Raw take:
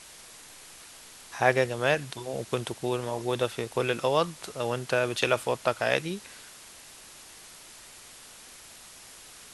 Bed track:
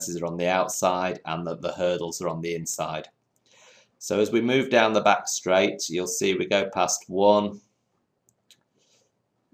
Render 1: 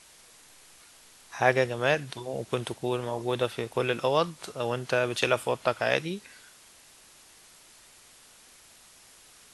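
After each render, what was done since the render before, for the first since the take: noise print and reduce 6 dB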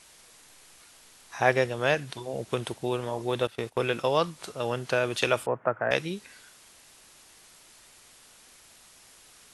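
3.47–4.19 gate -42 dBFS, range -14 dB; 5.46–5.91 elliptic band-pass 110–1700 Hz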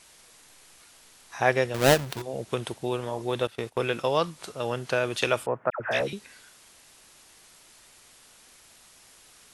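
1.74–2.22 half-waves squared off; 5.7–6.13 dispersion lows, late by 99 ms, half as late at 1200 Hz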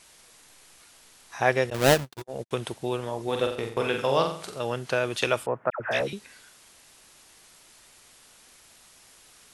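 1.7–2.51 gate -34 dBFS, range -48 dB; 3.23–4.59 flutter echo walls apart 7.6 m, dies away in 0.5 s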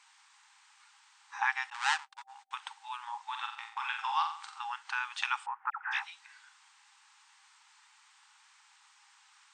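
FFT band-pass 780–9000 Hz; high shelf 2800 Hz -11.5 dB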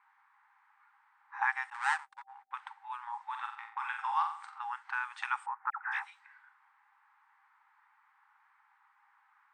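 low-pass opened by the level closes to 1600 Hz, open at -31.5 dBFS; band shelf 4300 Hz -12 dB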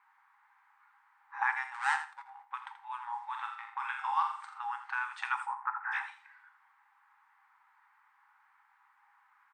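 on a send: feedback echo 82 ms, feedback 17%, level -11.5 dB; on the sum: shoebox room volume 220 m³, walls furnished, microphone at 0.62 m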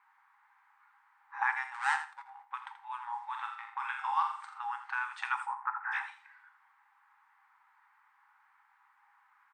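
nothing audible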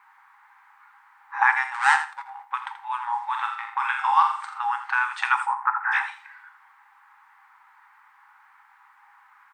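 gain +11.5 dB

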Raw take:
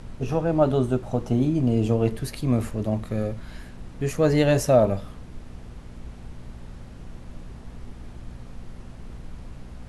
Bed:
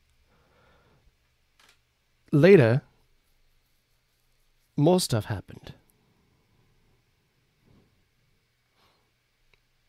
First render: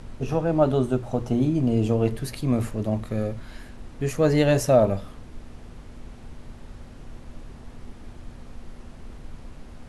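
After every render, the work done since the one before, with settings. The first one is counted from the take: de-hum 60 Hz, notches 3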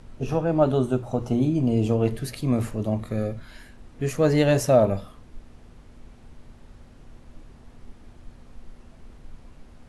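noise print and reduce 6 dB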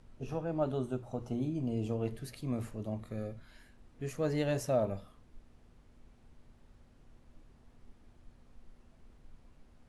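gain -12.5 dB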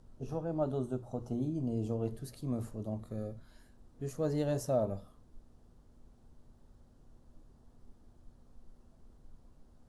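bell 2300 Hz -12.5 dB 1.1 oct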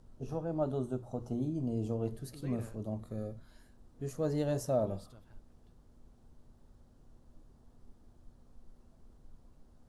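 add bed -31.5 dB

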